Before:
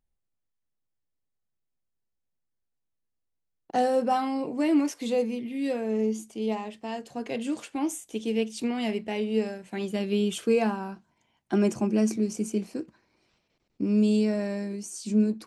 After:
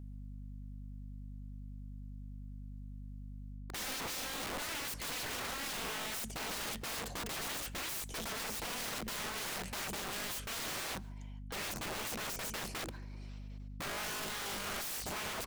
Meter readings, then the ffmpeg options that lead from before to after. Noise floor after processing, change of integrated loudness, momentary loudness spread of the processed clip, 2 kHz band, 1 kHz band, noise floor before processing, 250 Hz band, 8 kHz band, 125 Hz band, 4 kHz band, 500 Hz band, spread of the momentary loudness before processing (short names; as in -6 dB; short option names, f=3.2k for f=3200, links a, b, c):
-46 dBFS, -11.5 dB, 12 LU, +0.5 dB, -9.5 dB, -80 dBFS, -22.5 dB, +1.5 dB, n/a, +2.0 dB, -18.5 dB, 11 LU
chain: -filter_complex "[0:a]areverse,acompressor=threshold=-36dB:ratio=12,areverse,aeval=exprs='val(0)+0.002*(sin(2*PI*50*n/s)+sin(2*PI*2*50*n/s)/2+sin(2*PI*3*50*n/s)/3+sin(2*PI*4*50*n/s)/4+sin(2*PI*5*50*n/s)/5)':c=same,acontrast=74,aeval=exprs='(mod(70.8*val(0)+1,2)-1)/70.8':c=same,asplit=2[a][b];[b]adelay=139.9,volume=-26dB,highshelf=f=4k:g=-3.15[c];[a][c]amix=inputs=2:normalize=0,volume=2dB"